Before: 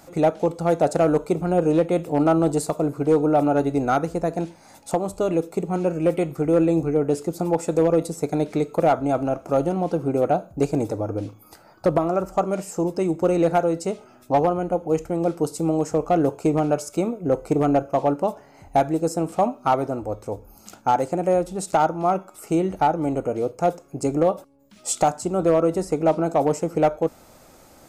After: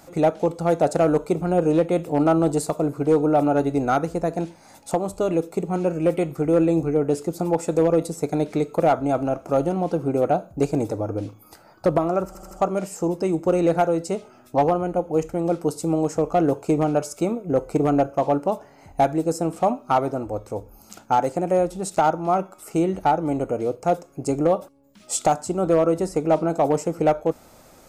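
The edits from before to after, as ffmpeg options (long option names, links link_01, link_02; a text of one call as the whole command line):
ffmpeg -i in.wav -filter_complex "[0:a]asplit=4[link_01][link_02][link_03][link_04];[link_01]atrim=end=12.352[link_05];[link_02]atrim=start=12.268:end=12.352[link_06];[link_03]atrim=start=12.268:end=12.352[link_07];[link_04]atrim=start=12.268[link_08];[link_05][link_06]acrossfade=duration=0.004:curve1=hsin:curve2=hsin[link_09];[link_09][link_07]acrossfade=duration=0.004:curve1=hsin:curve2=hsin[link_10];[link_10][link_08]acrossfade=duration=0.004:curve1=hsin:curve2=hsin" out.wav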